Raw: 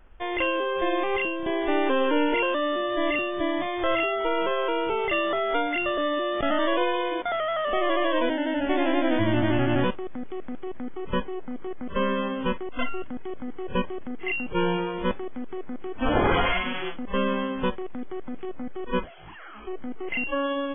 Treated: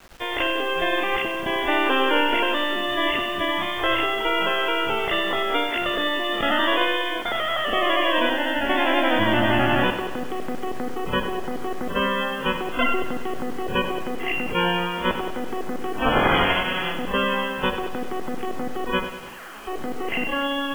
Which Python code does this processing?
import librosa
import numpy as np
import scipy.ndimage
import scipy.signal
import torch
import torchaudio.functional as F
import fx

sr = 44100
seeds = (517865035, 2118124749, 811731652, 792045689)

p1 = fx.spec_clip(x, sr, under_db=15)
p2 = fx.peak_eq(p1, sr, hz=75.0, db=-9.5, octaves=0.62)
p3 = fx.notch(p2, sr, hz=2200.0, q=15.0)
p4 = fx.quant_dither(p3, sr, seeds[0], bits=8, dither='none')
p5 = p4 + fx.echo_feedback(p4, sr, ms=97, feedback_pct=59, wet_db=-10, dry=0)
y = p5 * librosa.db_to_amplitude(2.0)